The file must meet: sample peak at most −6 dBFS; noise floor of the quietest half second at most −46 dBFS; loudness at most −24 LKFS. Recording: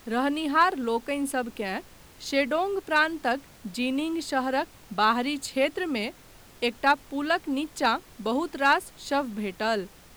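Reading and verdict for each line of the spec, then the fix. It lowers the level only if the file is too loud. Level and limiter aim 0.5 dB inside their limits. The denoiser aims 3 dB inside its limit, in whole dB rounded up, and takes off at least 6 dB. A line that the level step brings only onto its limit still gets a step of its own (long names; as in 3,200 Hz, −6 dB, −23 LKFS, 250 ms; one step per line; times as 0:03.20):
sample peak −11.0 dBFS: in spec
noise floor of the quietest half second −51 dBFS: in spec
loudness −27.0 LKFS: in spec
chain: no processing needed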